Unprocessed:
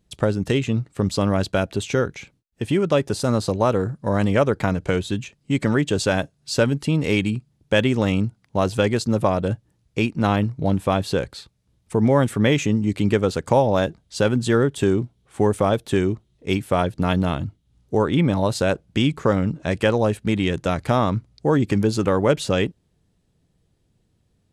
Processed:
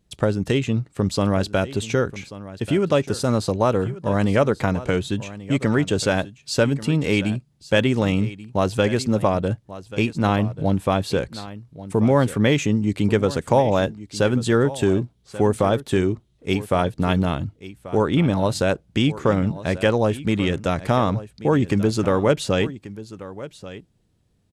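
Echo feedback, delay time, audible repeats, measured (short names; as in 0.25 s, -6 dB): no steady repeat, 1.136 s, 1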